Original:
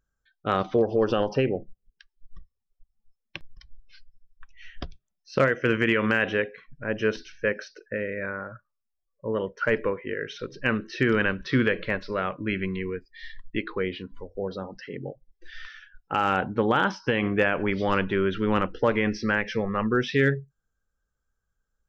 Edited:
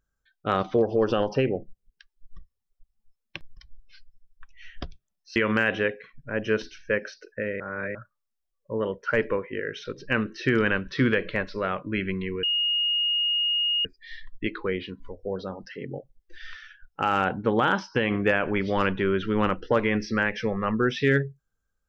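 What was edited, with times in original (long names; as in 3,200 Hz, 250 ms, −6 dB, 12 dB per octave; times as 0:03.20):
0:05.36–0:05.90: remove
0:08.14–0:08.49: reverse
0:12.97: insert tone 2,860 Hz −21.5 dBFS 1.42 s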